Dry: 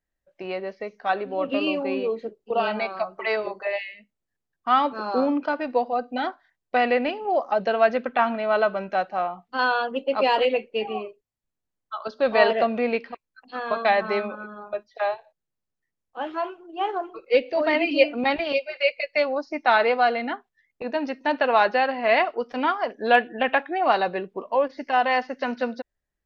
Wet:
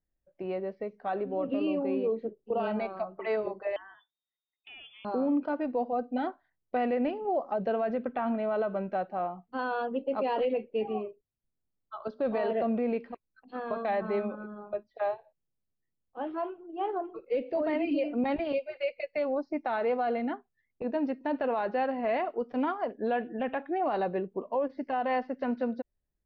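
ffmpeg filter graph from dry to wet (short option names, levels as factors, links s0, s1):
-filter_complex "[0:a]asettb=1/sr,asplit=3[s0][s1][s2];[s0]atrim=end=3.764[s3];[s1]atrim=start=3.76:end=5.05,asetpts=PTS-STARTPTS,afade=t=in:d=0.004:c=qsin,afade=t=out:st=1.286:d=0.004:c=qsin,lowpass=f=3100:t=q:w=0.5098,lowpass=f=3100:t=q:w=0.6013,lowpass=f=3100:t=q:w=0.9,lowpass=f=3100:t=q:w=2.563,afreqshift=-3700,acompressor=threshold=0.0178:ratio=4:attack=3.2:release=140:knee=1:detection=peak[s4];[s2]atrim=start=5.046[s5];[s3][s4]acrossfade=d=0.004:c1=hsin:c2=qsin[s6];[s6][s5]acrossfade=d=0.004:c1=qsin:c2=hsin,lowpass=4200,tiltshelf=f=810:g=8,alimiter=limit=0.178:level=0:latency=1:release=45,volume=0.473"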